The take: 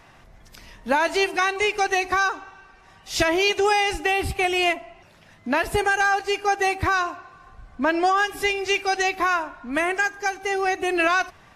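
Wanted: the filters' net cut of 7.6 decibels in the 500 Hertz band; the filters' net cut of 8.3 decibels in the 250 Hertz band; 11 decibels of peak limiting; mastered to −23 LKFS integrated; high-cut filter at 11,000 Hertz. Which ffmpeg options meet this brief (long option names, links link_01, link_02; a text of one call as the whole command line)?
ffmpeg -i in.wav -af "lowpass=11000,equalizer=frequency=250:width_type=o:gain=-8,equalizer=frequency=500:width_type=o:gain=-8,volume=6.5dB,alimiter=limit=-14.5dB:level=0:latency=1" out.wav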